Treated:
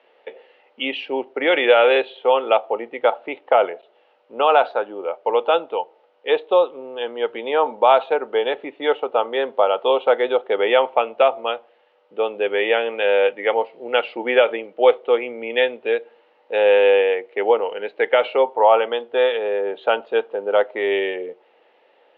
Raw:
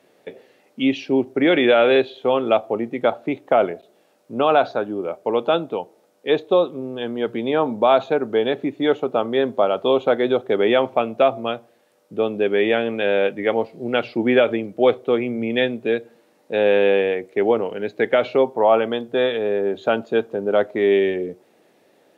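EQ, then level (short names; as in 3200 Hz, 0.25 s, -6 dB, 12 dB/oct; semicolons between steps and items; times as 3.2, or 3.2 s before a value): speaker cabinet 490–3700 Hz, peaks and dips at 490 Hz +8 dB, 880 Hz +9 dB, 1300 Hz +4 dB, 2000 Hz +4 dB, 2900 Hz +9 dB; -2.0 dB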